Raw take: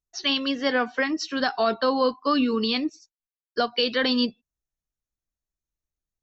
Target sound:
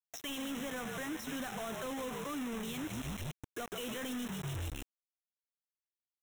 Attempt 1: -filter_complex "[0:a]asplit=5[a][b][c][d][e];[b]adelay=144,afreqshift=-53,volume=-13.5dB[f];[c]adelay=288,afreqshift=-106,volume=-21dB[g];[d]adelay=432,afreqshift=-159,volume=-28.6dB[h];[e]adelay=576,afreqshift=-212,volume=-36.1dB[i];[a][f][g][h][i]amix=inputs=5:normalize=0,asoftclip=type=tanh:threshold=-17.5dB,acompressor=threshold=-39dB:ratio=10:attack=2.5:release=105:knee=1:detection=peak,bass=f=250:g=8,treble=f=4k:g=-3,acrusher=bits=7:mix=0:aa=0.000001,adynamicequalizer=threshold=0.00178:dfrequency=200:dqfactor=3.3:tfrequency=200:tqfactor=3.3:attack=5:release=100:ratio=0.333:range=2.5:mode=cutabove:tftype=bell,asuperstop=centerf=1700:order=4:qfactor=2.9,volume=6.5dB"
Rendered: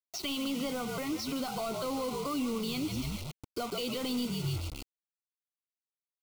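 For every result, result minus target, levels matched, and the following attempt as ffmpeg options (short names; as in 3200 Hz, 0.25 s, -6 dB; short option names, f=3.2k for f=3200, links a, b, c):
compressor: peak gain reduction -7 dB; 2000 Hz band -6.0 dB
-filter_complex "[0:a]asplit=5[a][b][c][d][e];[b]adelay=144,afreqshift=-53,volume=-13.5dB[f];[c]adelay=288,afreqshift=-106,volume=-21dB[g];[d]adelay=432,afreqshift=-159,volume=-28.6dB[h];[e]adelay=576,afreqshift=-212,volume=-36.1dB[i];[a][f][g][h][i]amix=inputs=5:normalize=0,asoftclip=type=tanh:threshold=-17.5dB,acompressor=threshold=-47dB:ratio=10:attack=2.5:release=105:knee=1:detection=peak,bass=f=250:g=8,treble=f=4k:g=-3,acrusher=bits=7:mix=0:aa=0.000001,adynamicequalizer=threshold=0.00178:dfrequency=200:dqfactor=3.3:tfrequency=200:tqfactor=3.3:attack=5:release=100:ratio=0.333:range=2.5:mode=cutabove:tftype=bell,asuperstop=centerf=1700:order=4:qfactor=2.9,volume=6.5dB"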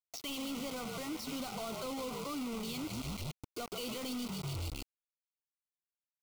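2000 Hz band -4.5 dB
-filter_complex "[0:a]asplit=5[a][b][c][d][e];[b]adelay=144,afreqshift=-53,volume=-13.5dB[f];[c]adelay=288,afreqshift=-106,volume=-21dB[g];[d]adelay=432,afreqshift=-159,volume=-28.6dB[h];[e]adelay=576,afreqshift=-212,volume=-36.1dB[i];[a][f][g][h][i]amix=inputs=5:normalize=0,asoftclip=type=tanh:threshold=-17.5dB,acompressor=threshold=-47dB:ratio=10:attack=2.5:release=105:knee=1:detection=peak,bass=f=250:g=8,treble=f=4k:g=-3,acrusher=bits=7:mix=0:aa=0.000001,adynamicequalizer=threshold=0.00178:dfrequency=200:dqfactor=3.3:tfrequency=200:tqfactor=3.3:attack=5:release=100:ratio=0.333:range=2.5:mode=cutabove:tftype=bell,asuperstop=centerf=4600:order=4:qfactor=2.9,volume=6.5dB"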